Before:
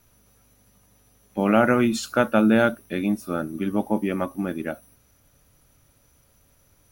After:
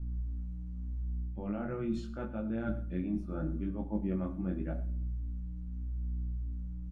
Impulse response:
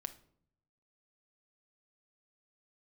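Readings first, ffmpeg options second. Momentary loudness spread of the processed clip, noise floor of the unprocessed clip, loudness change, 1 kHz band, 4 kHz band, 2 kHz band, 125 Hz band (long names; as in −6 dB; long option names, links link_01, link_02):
6 LU, −61 dBFS, −14.5 dB, −21.5 dB, below −20 dB, −23.5 dB, −3.0 dB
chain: -filter_complex "[0:a]aeval=exprs='val(0)+0.0112*(sin(2*PI*60*n/s)+sin(2*PI*2*60*n/s)/2+sin(2*PI*3*60*n/s)/3+sin(2*PI*4*60*n/s)/4+sin(2*PI*5*60*n/s)/5)':channel_layout=same,highshelf=frequency=9300:gain=-9.5,areverse,acompressor=threshold=-26dB:ratio=6,areverse,flanger=delay=17:depth=5.6:speed=0.81,aemphasis=mode=reproduction:type=riaa,aecho=1:1:111:0.126[link_01];[1:a]atrim=start_sample=2205[link_02];[link_01][link_02]afir=irnorm=-1:irlink=0,volume=-6.5dB"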